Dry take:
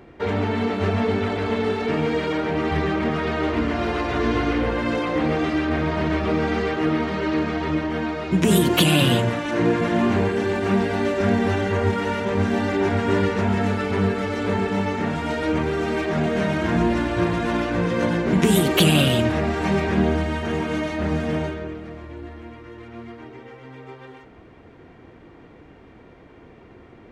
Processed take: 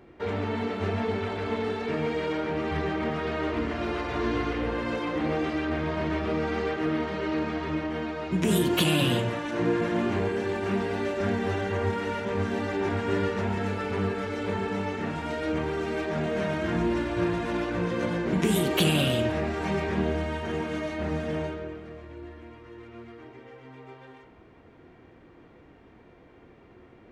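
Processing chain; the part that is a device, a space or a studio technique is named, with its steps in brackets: filtered reverb send (on a send: high-pass 250 Hz 24 dB/octave + low-pass 4.8 kHz + reverberation RT60 0.65 s, pre-delay 16 ms, DRR 6 dB); on the sum: trim -7 dB

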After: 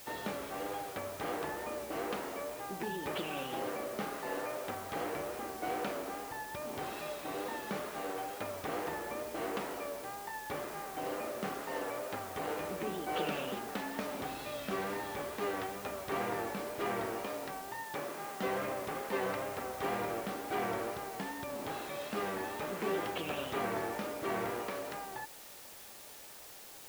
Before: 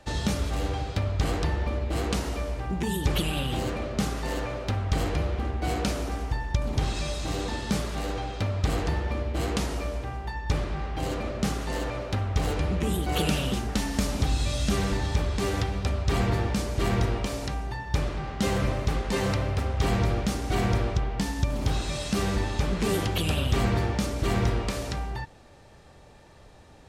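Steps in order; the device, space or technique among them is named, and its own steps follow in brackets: wax cylinder (band-pass 380–2100 Hz; wow and flutter; white noise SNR 13 dB); 17.84–18.43 s: high-pass 140 Hz 12 dB/octave; trim -3.5 dB

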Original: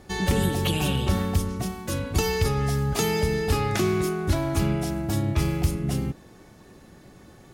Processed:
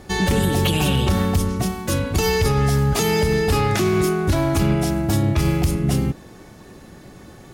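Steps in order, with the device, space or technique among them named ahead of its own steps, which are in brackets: limiter into clipper (peak limiter -16 dBFS, peak gain reduction 5 dB; hard clipper -18.5 dBFS, distortion -26 dB); trim +7 dB

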